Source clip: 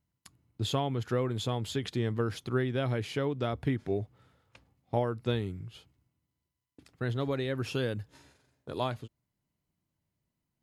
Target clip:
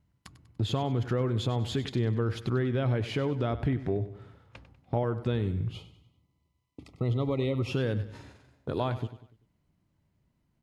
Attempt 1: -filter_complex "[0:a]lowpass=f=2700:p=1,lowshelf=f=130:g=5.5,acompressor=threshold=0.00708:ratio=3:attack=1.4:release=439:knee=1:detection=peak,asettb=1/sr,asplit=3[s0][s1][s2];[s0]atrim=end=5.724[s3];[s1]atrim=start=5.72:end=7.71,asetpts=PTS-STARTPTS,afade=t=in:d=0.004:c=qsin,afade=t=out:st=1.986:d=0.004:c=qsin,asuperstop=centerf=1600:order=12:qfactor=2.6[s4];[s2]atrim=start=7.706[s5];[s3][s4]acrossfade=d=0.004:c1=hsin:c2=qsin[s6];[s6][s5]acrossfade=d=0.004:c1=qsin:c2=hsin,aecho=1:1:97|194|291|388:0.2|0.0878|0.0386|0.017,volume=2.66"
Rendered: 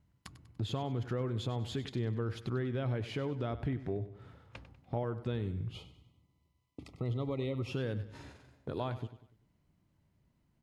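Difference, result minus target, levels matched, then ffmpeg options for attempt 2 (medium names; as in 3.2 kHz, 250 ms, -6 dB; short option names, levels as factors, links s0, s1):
compression: peak gain reduction +6.5 dB
-filter_complex "[0:a]lowpass=f=2700:p=1,lowshelf=f=130:g=5.5,acompressor=threshold=0.0224:ratio=3:attack=1.4:release=439:knee=1:detection=peak,asettb=1/sr,asplit=3[s0][s1][s2];[s0]atrim=end=5.724[s3];[s1]atrim=start=5.72:end=7.71,asetpts=PTS-STARTPTS,afade=t=in:d=0.004:c=qsin,afade=t=out:st=1.986:d=0.004:c=qsin,asuperstop=centerf=1600:order=12:qfactor=2.6[s4];[s2]atrim=start=7.706[s5];[s3][s4]acrossfade=d=0.004:c1=hsin:c2=qsin[s6];[s6][s5]acrossfade=d=0.004:c1=qsin:c2=hsin,aecho=1:1:97|194|291|388:0.2|0.0878|0.0386|0.017,volume=2.66"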